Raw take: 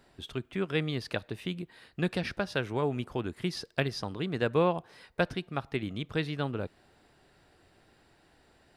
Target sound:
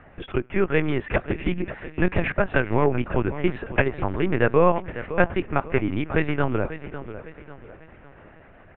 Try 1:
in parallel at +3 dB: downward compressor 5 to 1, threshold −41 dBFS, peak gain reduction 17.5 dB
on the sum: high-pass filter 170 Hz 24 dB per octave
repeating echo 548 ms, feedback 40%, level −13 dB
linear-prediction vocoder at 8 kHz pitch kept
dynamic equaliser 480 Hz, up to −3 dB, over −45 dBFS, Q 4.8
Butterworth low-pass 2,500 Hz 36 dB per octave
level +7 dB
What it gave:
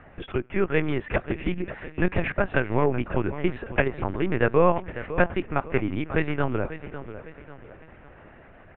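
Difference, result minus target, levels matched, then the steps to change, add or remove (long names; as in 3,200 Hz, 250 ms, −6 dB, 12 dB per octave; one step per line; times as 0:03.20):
downward compressor: peak gain reduction +6.5 dB
change: downward compressor 5 to 1, threshold −33 dBFS, peak gain reduction 11.5 dB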